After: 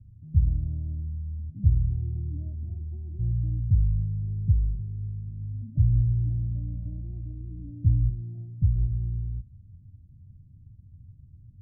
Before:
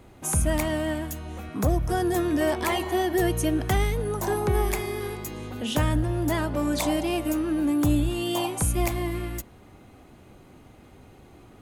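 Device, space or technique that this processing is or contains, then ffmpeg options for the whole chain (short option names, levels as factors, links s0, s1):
the neighbour's flat through the wall: -af "lowpass=f=150:w=0.5412,lowpass=f=150:w=1.3066,superequalizer=7b=0.501:8b=3.16,equalizer=f=97:t=o:w=0.95:g=8"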